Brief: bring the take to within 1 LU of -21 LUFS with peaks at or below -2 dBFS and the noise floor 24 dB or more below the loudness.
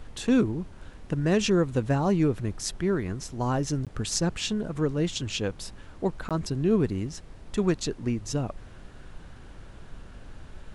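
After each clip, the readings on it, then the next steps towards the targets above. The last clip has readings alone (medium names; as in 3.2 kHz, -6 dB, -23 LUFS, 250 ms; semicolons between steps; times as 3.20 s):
dropouts 2; longest dropout 17 ms; noise floor -47 dBFS; noise floor target -52 dBFS; loudness -27.5 LUFS; peak level -10.0 dBFS; loudness target -21.0 LUFS
-> interpolate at 3.85/6.29 s, 17 ms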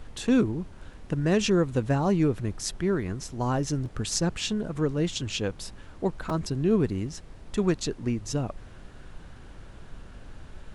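dropouts 0; noise floor -47 dBFS; noise floor target -52 dBFS
-> noise print and reduce 6 dB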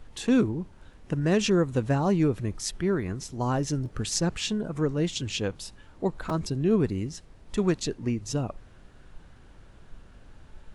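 noise floor -53 dBFS; loudness -27.5 LUFS; peak level -10.0 dBFS; loudness target -21.0 LUFS
-> trim +6.5 dB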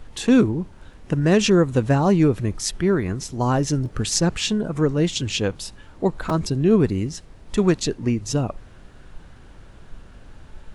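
loudness -21.0 LUFS; peak level -3.5 dBFS; noise floor -46 dBFS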